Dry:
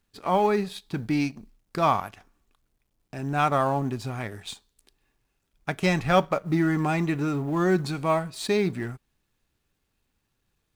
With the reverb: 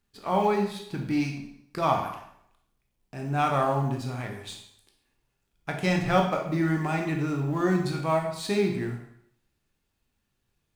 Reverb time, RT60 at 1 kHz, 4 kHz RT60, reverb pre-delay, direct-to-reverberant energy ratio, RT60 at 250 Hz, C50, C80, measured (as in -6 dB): 0.70 s, 0.70 s, 0.65 s, 7 ms, 1.5 dB, 0.70 s, 6.0 dB, 9.0 dB